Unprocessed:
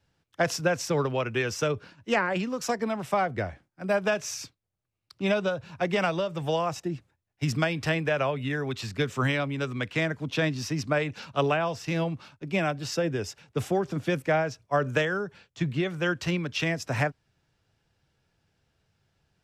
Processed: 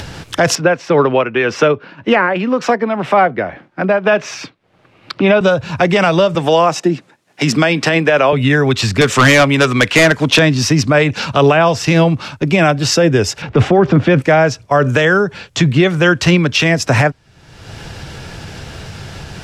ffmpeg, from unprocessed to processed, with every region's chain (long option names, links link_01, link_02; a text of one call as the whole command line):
ffmpeg -i in.wav -filter_complex "[0:a]asettb=1/sr,asplit=3[link_01][link_02][link_03];[link_01]atrim=end=0.554[link_04];[link_02]atrim=start=0.55:end=5.41,asetpts=PTS-STARTPTS,afade=type=in:duration=0.004:curve=qsin,afade=type=out:start_time=4.856:duration=0.004:curve=qsin,acrossover=split=160 3500:gain=0.0794 1 0.0708[link_05][link_06][link_07];[link_05][link_06][link_07]amix=inputs=3:normalize=0,tremolo=f=1.9:d=0.56[link_08];[link_03]atrim=start=5.406[link_09];[link_04][link_08]acrossfade=duration=0.004:curve1=hsin:curve2=qsin[link_10];[link_10][link_09]acrossfade=duration=0.004:curve1=qsin:curve2=hsin,asettb=1/sr,asplit=3[link_11][link_12][link_13];[link_11]atrim=end=6.354[link_14];[link_12]atrim=start=6.35:end=8.33,asetpts=PTS-STARTPTS,afade=type=in:duration=0.004:curve=qsin,afade=type=out:start_time=1.976:duration=0.004:curve=qsin,highpass=frequency=180:width=0.5412,highpass=frequency=180:width=1.3066,highshelf=frequency=9700:gain=-6.5[link_15];[link_13]atrim=start=8.326[link_16];[link_14][link_15]acrossfade=duration=0.004:curve1=hsin:curve2=qsin[link_17];[link_17][link_16]acrossfade=duration=0.004:curve1=qsin:curve2=hsin,asettb=1/sr,asplit=3[link_18][link_19][link_20];[link_18]atrim=end=9.014[link_21];[link_19]atrim=start=9.01:end=10.39,asetpts=PTS-STARTPTS,afade=type=in:duration=0.004:curve=qsin,afade=type=out:start_time=1.376:duration=0.004:curve=qsin,lowshelf=frequency=330:gain=-10,acontrast=62,asoftclip=type=hard:threshold=-22.5dB[link_22];[link_20]atrim=start=10.386[link_23];[link_21][link_22]acrossfade=duration=0.004:curve1=hsin:curve2=qsin[link_24];[link_24][link_23]acrossfade=duration=0.004:curve1=qsin:curve2=hsin,asettb=1/sr,asplit=3[link_25][link_26][link_27];[link_25]atrim=end=13.424[link_28];[link_26]atrim=start=13.42:end=14.22,asetpts=PTS-STARTPTS,afade=type=in:duration=0.004:curve=qsin,afade=type=out:start_time=0.796:duration=0.004:curve=qsin,lowpass=2700,acontrast=70[link_29];[link_27]atrim=start=14.216[link_30];[link_28][link_29]acrossfade=duration=0.004:curve1=hsin:curve2=qsin[link_31];[link_31][link_30]acrossfade=duration=0.004:curve1=qsin:curve2=hsin,lowpass=11000,acompressor=mode=upward:threshold=-27dB:ratio=2.5,alimiter=level_in=18.5dB:limit=-1dB:release=50:level=0:latency=1,volume=-1dB" out.wav